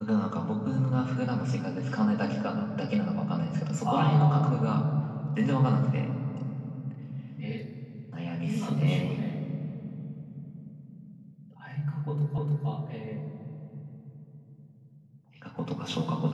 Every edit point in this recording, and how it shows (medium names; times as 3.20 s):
12.38 s: repeat of the last 0.3 s